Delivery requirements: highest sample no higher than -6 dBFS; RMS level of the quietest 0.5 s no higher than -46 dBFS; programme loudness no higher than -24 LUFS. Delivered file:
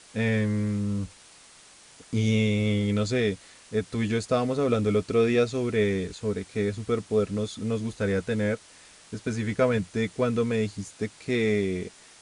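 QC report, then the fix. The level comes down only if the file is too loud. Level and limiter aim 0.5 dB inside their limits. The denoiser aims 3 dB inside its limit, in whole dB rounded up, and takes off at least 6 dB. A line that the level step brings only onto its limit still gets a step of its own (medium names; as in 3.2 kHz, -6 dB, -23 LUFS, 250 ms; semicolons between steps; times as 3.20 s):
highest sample -10.5 dBFS: pass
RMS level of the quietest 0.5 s -52 dBFS: pass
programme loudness -27.0 LUFS: pass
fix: none needed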